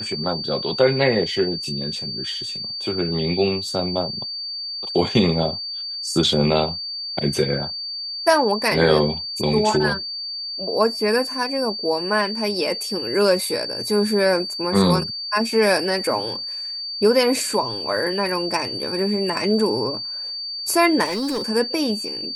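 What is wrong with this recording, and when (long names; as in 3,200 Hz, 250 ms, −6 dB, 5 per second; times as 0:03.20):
whistle 4,600 Hz −27 dBFS
0:21.04–0:21.45: clipping −21 dBFS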